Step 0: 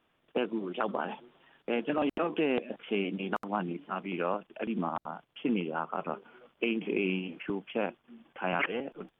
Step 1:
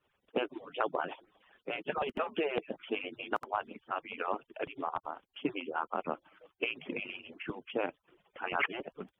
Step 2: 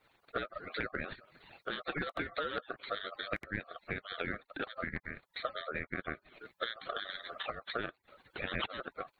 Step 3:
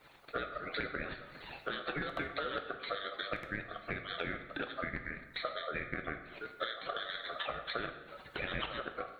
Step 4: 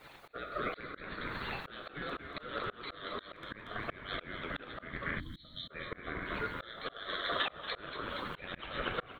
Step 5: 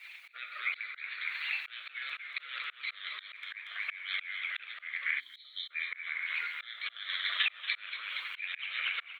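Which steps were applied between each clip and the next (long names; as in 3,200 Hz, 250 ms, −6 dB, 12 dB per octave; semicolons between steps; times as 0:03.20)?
harmonic-percussive split with one part muted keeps percussive
downward compressor 2.5 to 1, threshold −47 dBFS, peak gain reduction 14.5 dB; ring modulation 930 Hz; level +10.5 dB
downward compressor 2 to 1, threshold −51 dBFS, peak gain reduction 11.5 dB; dense smooth reverb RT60 1.1 s, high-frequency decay 0.75×, DRR 5.5 dB; level +8.5 dB
echo with shifted repeats 234 ms, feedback 61%, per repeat −85 Hz, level −6.5 dB; volume swells 416 ms; gain on a spectral selection 0:05.19–0:05.71, 330–3,000 Hz −21 dB; level +6 dB
high-pass with resonance 2,300 Hz, resonance Q 5.2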